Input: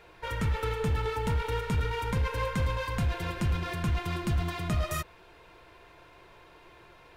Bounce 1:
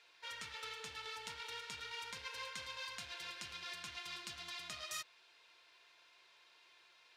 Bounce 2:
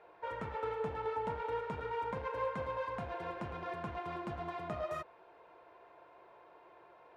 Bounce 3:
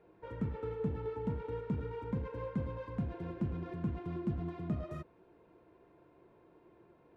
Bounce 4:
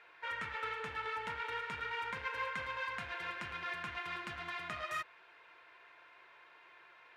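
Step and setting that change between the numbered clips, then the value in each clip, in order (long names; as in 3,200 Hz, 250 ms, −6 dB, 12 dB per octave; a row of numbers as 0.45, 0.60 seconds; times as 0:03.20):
resonant band-pass, frequency: 4,800, 700, 260, 1,800 Hertz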